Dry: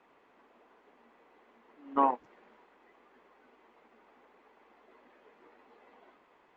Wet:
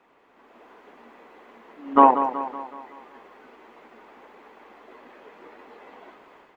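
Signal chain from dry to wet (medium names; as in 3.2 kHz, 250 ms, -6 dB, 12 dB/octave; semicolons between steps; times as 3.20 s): level rider gain up to 9 dB; feedback delay 187 ms, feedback 51%, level -10.5 dB; trim +3.5 dB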